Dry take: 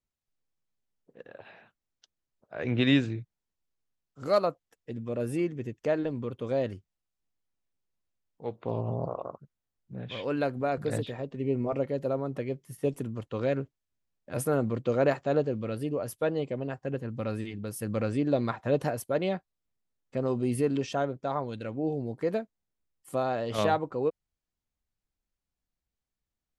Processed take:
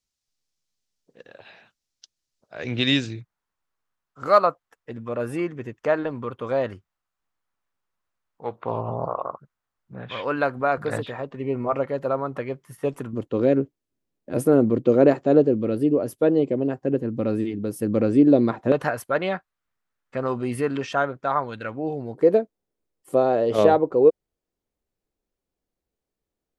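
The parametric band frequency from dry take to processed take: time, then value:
parametric band +14 dB 1.7 octaves
5,400 Hz
from 0:03.21 1,200 Hz
from 0:13.13 320 Hz
from 0:18.72 1,400 Hz
from 0:22.15 420 Hz

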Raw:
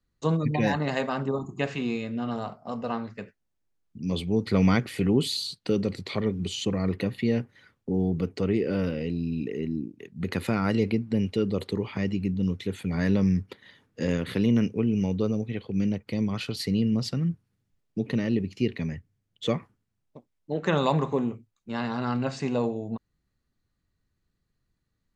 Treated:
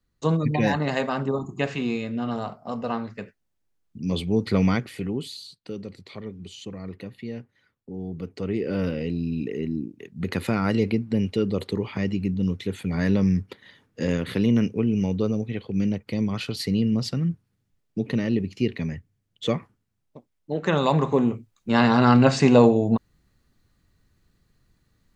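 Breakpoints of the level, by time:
0:04.48 +2.5 dB
0:05.38 −9.5 dB
0:07.91 −9.5 dB
0:08.86 +2 dB
0:20.82 +2 dB
0:21.78 +12 dB

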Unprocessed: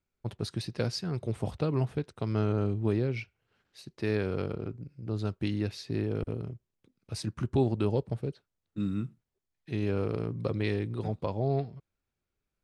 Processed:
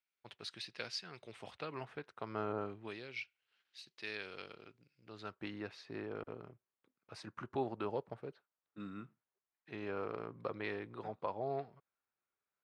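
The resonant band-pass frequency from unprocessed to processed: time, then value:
resonant band-pass, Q 1.1
0:01.39 2,600 Hz
0:02.57 940 Hz
0:02.98 3,300 Hz
0:04.98 3,300 Hz
0:05.41 1,200 Hz

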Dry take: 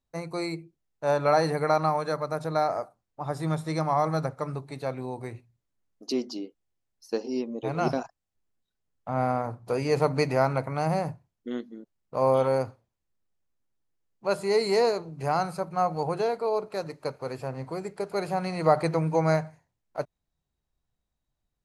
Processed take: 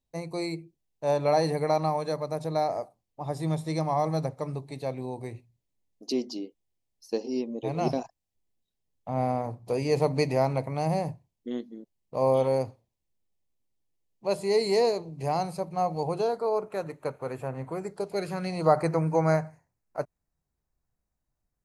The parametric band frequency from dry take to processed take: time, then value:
parametric band −15 dB 0.51 octaves
0:16.07 1,400 Hz
0:16.75 4,900 Hz
0:17.75 4,900 Hz
0:18.33 650 Hz
0:18.78 3,400 Hz

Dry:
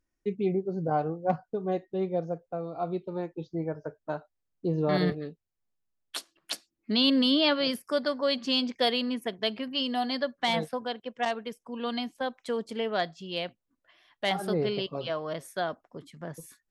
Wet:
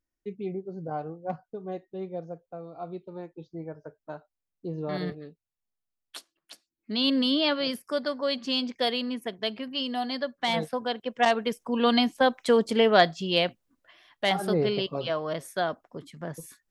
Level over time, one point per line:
0:06.16 −6 dB
0:06.52 −14 dB
0:07.06 −1 dB
0:10.36 −1 dB
0:11.61 +10 dB
0:13.24 +10 dB
0:14.28 +3 dB

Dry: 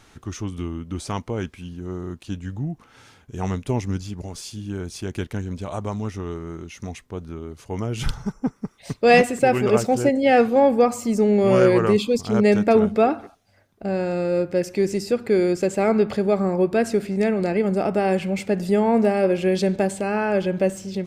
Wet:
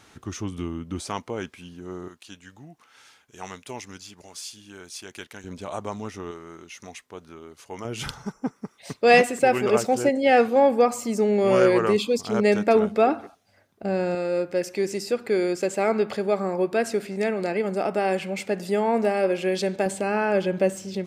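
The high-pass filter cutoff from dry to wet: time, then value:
high-pass filter 6 dB per octave
120 Hz
from 0:01.02 380 Hz
from 0:02.08 1,500 Hz
from 0:05.44 380 Hz
from 0:06.31 820 Hz
from 0:07.85 340 Hz
from 0:13.07 150 Hz
from 0:14.15 470 Hz
from 0:19.86 210 Hz

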